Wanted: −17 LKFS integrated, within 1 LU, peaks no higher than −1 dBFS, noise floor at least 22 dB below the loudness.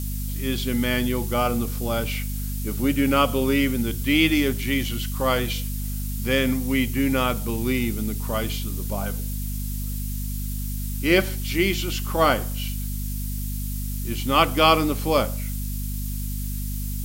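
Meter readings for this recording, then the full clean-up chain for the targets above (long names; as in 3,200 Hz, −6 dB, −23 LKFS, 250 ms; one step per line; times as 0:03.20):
mains hum 50 Hz; hum harmonics up to 250 Hz; level of the hum −26 dBFS; background noise floor −28 dBFS; target noise floor −46 dBFS; integrated loudness −24.0 LKFS; sample peak −3.5 dBFS; target loudness −17.0 LKFS
→ mains-hum notches 50/100/150/200/250 Hz
noise reduction from a noise print 18 dB
level +7 dB
brickwall limiter −1 dBFS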